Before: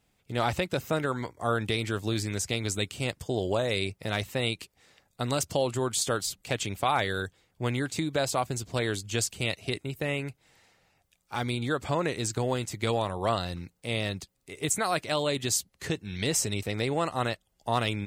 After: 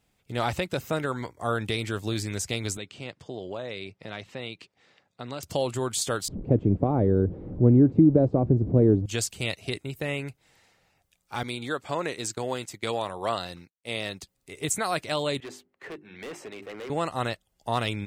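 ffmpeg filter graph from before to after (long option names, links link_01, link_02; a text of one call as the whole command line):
ffmpeg -i in.wav -filter_complex "[0:a]asettb=1/sr,asplit=3[link_01][link_02][link_03];[link_01]atrim=end=2.774[link_04];[link_02]atrim=start=2.77:end=5.43,asetpts=PTS-STARTPTS,afade=type=in:duration=0.004:curve=qsin,afade=type=out:start_time=2.656:duration=0.004:curve=qsin,acompressor=threshold=-43dB:ratio=1.5:attack=3.2:release=140:knee=1:detection=peak,highpass=130,lowpass=4400[link_05];[link_03]atrim=start=5.426[link_06];[link_04][link_05]acrossfade=duration=0.004:curve1=hsin:curve2=qsin[link_07];[link_07][link_06]acrossfade=duration=0.004:curve1=qsin:curve2=hsin,asettb=1/sr,asplit=3[link_08][link_09][link_10];[link_08]atrim=end=6.284[link_11];[link_09]atrim=start=6.28:end=9.06,asetpts=PTS-STARTPTS,afade=type=in:duration=0.004:curve=qsin,afade=type=out:start_time=2.776:duration=0.004:curve=qsin,aeval=exprs='val(0)+0.5*0.0126*sgn(val(0))':channel_layout=same,lowpass=frequency=520:width_type=q:width=2.4,lowshelf=frequency=390:width_type=q:width=1.5:gain=9.5[link_12];[link_10]atrim=start=9.056[link_13];[link_11][link_12]acrossfade=duration=0.004:curve1=hsin:curve2=qsin[link_14];[link_14][link_13]acrossfade=duration=0.004:curve1=qsin:curve2=hsin,asettb=1/sr,asplit=3[link_15][link_16][link_17];[link_15]atrim=end=11.434[link_18];[link_16]atrim=start=11.43:end=14.21,asetpts=PTS-STARTPTS,afade=type=in:duration=0.004:curve=qsin,afade=type=out:start_time=2.776:duration=0.004:curve=qsin,agate=range=-33dB:threshold=-35dB:ratio=3:release=100:detection=peak,highpass=frequency=290:poles=1[link_19];[link_17]atrim=start=14.206[link_20];[link_18][link_19]acrossfade=duration=0.004:curve1=hsin:curve2=qsin[link_21];[link_21][link_20]acrossfade=duration=0.004:curve1=qsin:curve2=hsin,asettb=1/sr,asplit=3[link_22][link_23][link_24];[link_22]atrim=end=15.404[link_25];[link_23]atrim=start=15.4:end=16.9,asetpts=PTS-STARTPTS,afade=type=in:duration=0.004:curve=qsin,afade=type=out:start_time=1.496:duration=0.004:curve=qsin,acrossover=split=260 2500:gain=0.0794 1 0.0631[link_26][link_27][link_28];[link_26][link_27][link_28]amix=inputs=3:normalize=0,bandreject=frequency=50:width_type=h:width=6,bandreject=frequency=100:width_type=h:width=6,bandreject=frequency=150:width_type=h:width=6,bandreject=frequency=200:width_type=h:width=6,bandreject=frequency=250:width_type=h:width=6,bandreject=frequency=300:width_type=h:width=6,bandreject=frequency=350:width_type=h:width=6,bandreject=frequency=400:width_type=h:width=6,volume=35dB,asoftclip=hard,volume=-35dB[link_29];[link_24]atrim=start=16.896[link_30];[link_25][link_29]acrossfade=duration=0.004:curve1=hsin:curve2=qsin[link_31];[link_31][link_30]acrossfade=duration=0.004:curve1=qsin:curve2=hsin" out.wav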